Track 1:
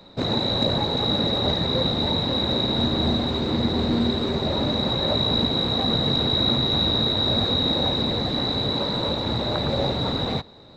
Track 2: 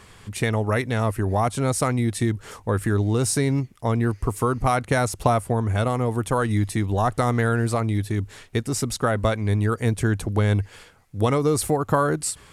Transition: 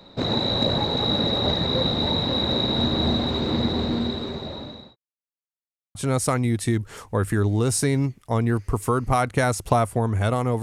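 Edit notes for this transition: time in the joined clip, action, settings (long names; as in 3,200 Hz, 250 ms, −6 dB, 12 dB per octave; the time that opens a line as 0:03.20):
track 1
0:03.58–0:04.96: fade out linear
0:04.96–0:05.95: silence
0:05.95: continue with track 2 from 0:01.49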